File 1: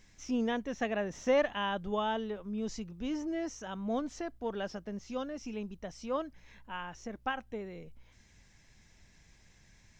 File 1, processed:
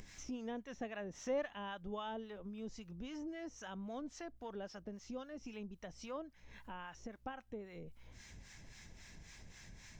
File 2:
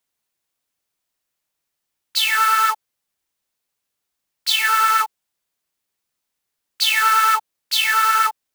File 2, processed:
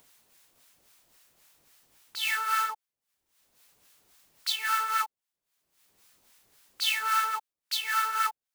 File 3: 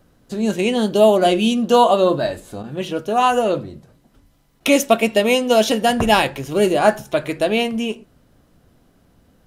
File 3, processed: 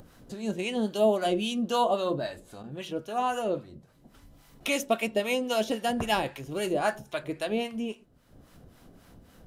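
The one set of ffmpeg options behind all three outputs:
-filter_complex "[0:a]acrossover=split=810[a][b];[a]aeval=exprs='val(0)*(1-0.7/2+0.7/2*cos(2*PI*3.7*n/s))':c=same[c];[b]aeval=exprs='val(0)*(1-0.7/2-0.7/2*cos(2*PI*3.7*n/s))':c=same[d];[c][d]amix=inputs=2:normalize=0,acompressor=mode=upward:threshold=-32dB:ratio=2.5,volume=-8dB"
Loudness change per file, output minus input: -10.5, -11.5, -12.0 LU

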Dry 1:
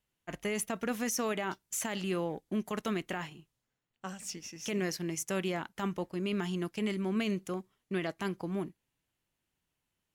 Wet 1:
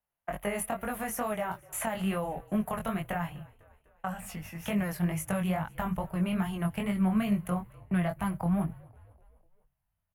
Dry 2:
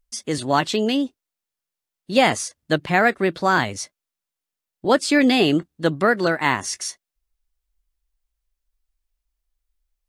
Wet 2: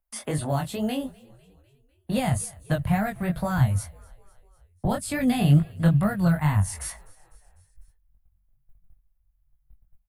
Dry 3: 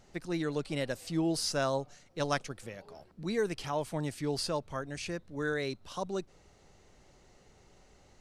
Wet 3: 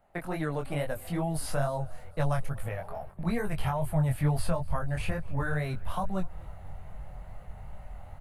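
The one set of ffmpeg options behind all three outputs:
-filter_complex "[0:a]asubboost=boost=9.5:cutoff=110,agate=range=-14dB:threshold=-50dB:ratio=16:detection=peak,acrossover=split=9800[a][b];[b]acompressor=threshold=-58dB:ratio=4:attack=1:release=60[c];[a][c]amix=inputs=2:normalize=0,firequalizer=gain_entry='entry(190,0);entry(370,-4);entry(640,12);entry(1000,8);entry(5700,-19);entry(11000,8)':delay=0.05:min_phase=1,acrossover=split=190|5100[d][e][f];[e]acompressor=threshold=-36dB:ratio=6[g];[d][g][f]amix=inputs=3:normalize=0,flanger=delay=19:depth=4.3:speed=2.3,asplit=2[h][i];[i]asplit=4[j][k][l][m];[j]adelay=250,afreqshift=-47,volume=-24dB[n];[k]adelay=500,afreqshift=-94,volume=-28.3dB[o];[l]adelay=750,afreqshift=-141,volume=-32.6dB[p];[m]adelay=1000,afreqshift=-188,volume=-36.9dB[q];[n][o][p][q]amix=inputs=4:normalize=0[r];[h][r]amix=inputs=2:normalize=0,volume=8dB"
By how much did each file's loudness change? 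+3.0, -4.5, +2.5 LU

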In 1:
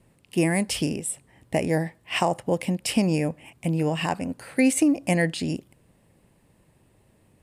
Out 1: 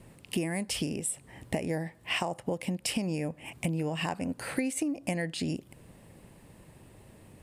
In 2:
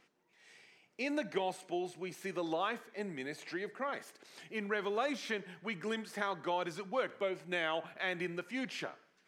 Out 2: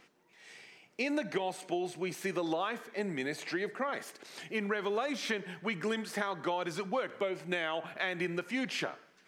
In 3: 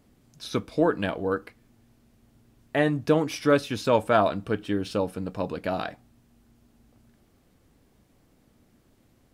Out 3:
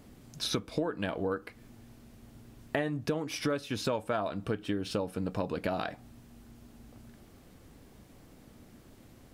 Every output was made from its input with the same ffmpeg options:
-af "acompressor=threshold=-36dB:ratio=8,volume=7dB"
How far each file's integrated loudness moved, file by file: -7.5, +3.0, -7.5 LU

